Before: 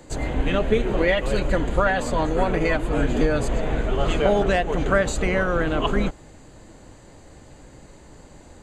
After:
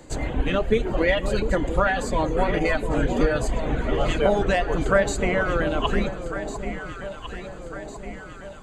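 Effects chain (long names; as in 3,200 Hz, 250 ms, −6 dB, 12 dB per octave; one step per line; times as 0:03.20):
reverb reduction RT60 0.92 s
delay that swaps between a low-pass and a high-pass 701 ms, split 920 Hz, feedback 72%, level −8 dB
on a send at −18 dB: convolution reverb RT60 1.0 s, pre-delay 3 ms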